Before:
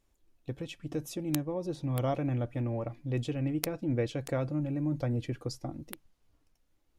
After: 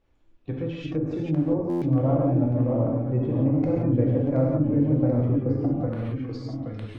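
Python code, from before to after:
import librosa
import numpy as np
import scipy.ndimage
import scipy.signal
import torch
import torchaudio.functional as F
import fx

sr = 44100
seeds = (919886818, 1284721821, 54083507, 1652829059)

y = fx.spec_quant(x, sr, step_db=15)
y = fx.echo_pitch(y, sr, ms=507, semitones=-1, count=2, db_per_echo=-6.0)
y = fx.env_lowpass(y, sr, base_hz=2700.0, full_db=-29.0)
y = fx.rev_gated(y, sr, seeds[0], gate_ms=200, shape='flat', drr_db=-2.5)
y = fx.env_lowpass_down(y, sr, base_hz=840.0, full_db=-26.5)
y = fx.buffer_glitch(y, sr, at_s=(1.69,), block=512, repeats=10)
y = fx.band_squash(y, sr, depth_pct=40, at=(3.76, 5.87))
y = y * 10.0 ** (4.5 / 20.0)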